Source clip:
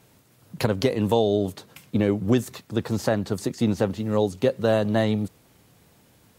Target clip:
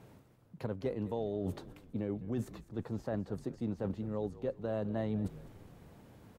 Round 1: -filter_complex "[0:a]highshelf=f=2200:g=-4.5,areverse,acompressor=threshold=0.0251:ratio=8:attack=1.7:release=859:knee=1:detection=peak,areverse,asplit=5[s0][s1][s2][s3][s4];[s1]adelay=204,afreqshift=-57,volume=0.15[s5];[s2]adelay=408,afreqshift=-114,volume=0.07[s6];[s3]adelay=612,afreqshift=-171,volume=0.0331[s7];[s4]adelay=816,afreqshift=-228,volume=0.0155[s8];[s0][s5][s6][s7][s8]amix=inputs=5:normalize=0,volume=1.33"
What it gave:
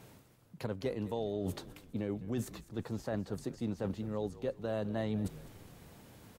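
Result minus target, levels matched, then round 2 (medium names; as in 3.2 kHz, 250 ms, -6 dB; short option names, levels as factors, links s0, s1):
4 kHz band +7.0 dB
-filter_complex "[0:a]highshelf=f=2200:g=-15,areverse,acompressor=threshold=0.0251:ratio=8:attack=1.7:release=859:knee=1:detection=peak,areverse,asplit=5[s0][s1][s2][s3][s4];[s1]adelay=204,afreqshift=-57,volume=0.15[s5];[s2]adelay=408,afreqshift=-114,volume=0.07[s6];[s3]adelay=612,afreqshift=-171,volume=0.0331[s7];[s4]adelay=816,afreqshift=-228,volume=0.0155[s8];[s0][s5][s6][s7][s8]amix=inputs=5:normalize=0,volume=1.33"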